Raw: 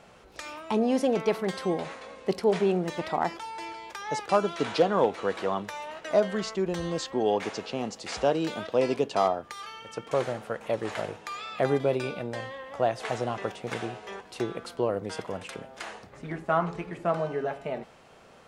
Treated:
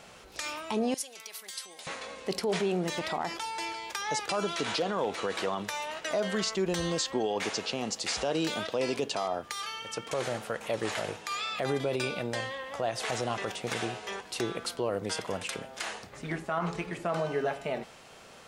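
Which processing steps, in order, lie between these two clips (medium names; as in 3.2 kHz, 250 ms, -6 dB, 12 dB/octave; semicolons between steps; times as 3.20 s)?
treble shelf 2.3 kHz +10 dB; peak limiter -20.5 dBFS, peak gain reduction 11.5 dB; 0.94–1.87 s: differentiator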